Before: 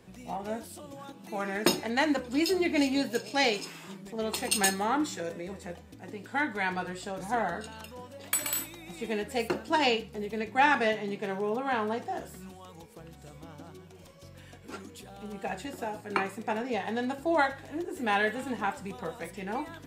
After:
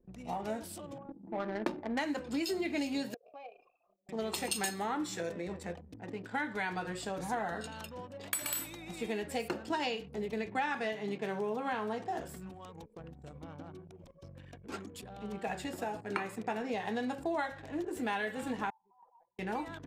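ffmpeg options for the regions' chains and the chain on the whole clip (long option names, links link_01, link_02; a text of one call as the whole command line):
ffmpeg -i in.wav -filter_complex "[0:a]asettb=1/sr,asplit=3[link_01][link_02][link_03];[link_01]atrim=end=0.984[link_04];[link_02]atrim=start=0.98:end=1.99,asetpts=PTS-STARTPTS,afade=type=in:duration=0.004:curve=qsin,afade=type=out:start_time=1.006:duration=0.004:curve=qsin,aecho=1:1:3.4:0.33,atrim=end_sample=44541,adynamicsmooth=sensitivity=1.5:basefreq=510[link_05];[link_03]atrim=start=1.986[link_06];[link_04][link_05]acrossfade=duration=0.004:curve1=hsin:curve2=qsin[link_07];[link_07][link_06]acrossfade=duration=0.004:curve1=qsin:curve2=hsin,asettb=1/sr,asplit=3[link_08][link_09][link_10];[link_08]atrim=end=3.144[link_11];[link_09]atrim=start=3.14:end=4.09,asetpts=PTS-STARTPTS,afade=type=in:duration=0.004:curve=qsin,afade=type=out:start_time=0.946:duration=0.004:curve=qsin,equalizer=frequency=500:width=4.6:gain=9.5,acompressor=threshold=-32dB:ratio=16:attack=3.2:release=140:knee=1:detection=peak,asplit=3[link_12][link_13][link_14];[link_12]bandpass=frequency=730:width_type=q:width=8,volume=0dB[link_15];[link_13]bandpass=frequency=1090:width_type=q:width=8,volume=-6dB[link_16];[link_14]bandpass=frequency=2440:width_type=q:width=8,volume=-9dB[link_17];[link_15][link_16][link_17]amix=inputs=3:normalize=0[link_18];[link_10]atrim=start=4.086[link_19];[link_11][link_18]acrossfade=duration=0.004:curve1=hsin:curve2=qsin[link_20];[link_20][link_19]acrossfade=duration=0.004:curve1=qsin:curve2=hsin,asettb=1/sr,asplit=3[link_21][link_22][link_23];[link_21]atrim=end=18.704[link_24];[link_22]atrim=start=18.7:end=19.39,asetpts=PTS-STARTPTS,afade=type=in:duration=0.004:curve=qsin,afade=type=out:start_time=0.686:duration=0.004:curve=qsin,bandpass=frequency=920:width_type=q:width=6.5,acompressor=threshold=-53dB:ratio=5:attack=3.2:release=140:knee=1:detection=peak[link_25];[link_23]atrim=start=19.386[link_26];[link_24][link_25]acrossfade=duration=0.004:curve1=hsin:curve2=qsin[link_27];[link_27][link_26]acrossfade=duration=0.004:curve1=qsin:curve2=hsin,anlmdn=0.00631,acompressor=threshold=-32dB:ratio=4" out.wav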